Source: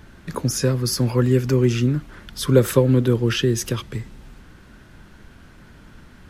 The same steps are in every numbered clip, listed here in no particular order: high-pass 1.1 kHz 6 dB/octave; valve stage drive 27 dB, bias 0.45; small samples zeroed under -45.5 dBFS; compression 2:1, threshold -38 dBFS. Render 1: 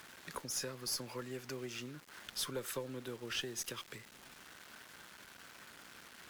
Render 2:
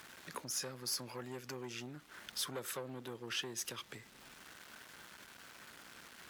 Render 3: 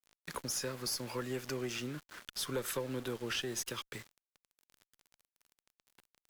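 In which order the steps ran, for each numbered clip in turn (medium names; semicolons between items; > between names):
compression > small samples zeroed > high-pass > valve stage; small samples zeroed > compression > valve stage > high-pass; high-pass > compression > small samples zeroed > valve stage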